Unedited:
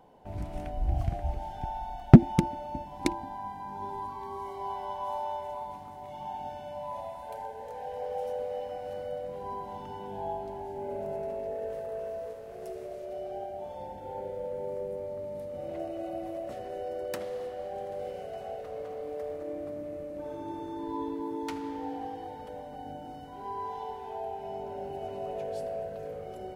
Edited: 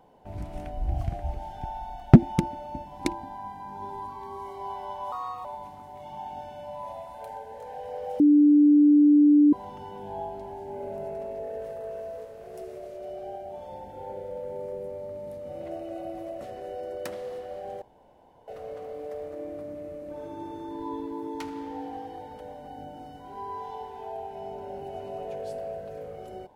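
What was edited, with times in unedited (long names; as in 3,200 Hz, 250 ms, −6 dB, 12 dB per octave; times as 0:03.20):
0:05.12–0:05.53: play speed 125%
0:08.28–0:09.61: beep over 294 Hz −13.5 dBFS
0:17.90–0:18.56: fill with room tone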